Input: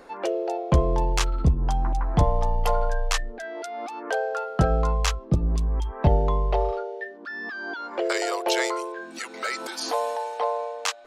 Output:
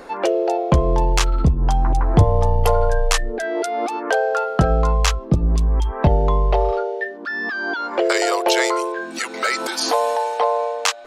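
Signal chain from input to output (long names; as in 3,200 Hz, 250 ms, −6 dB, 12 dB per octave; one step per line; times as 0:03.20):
0:01.90–0:03.97: graphic EQ with 15 bands 100 Hz +11 dB, 400 Hz +9 dB, 10,000 Hz +5 dB
downward compressor 2 to 1, threshold −24 dBFS, peak gain reduction 9 dB
level +9 dB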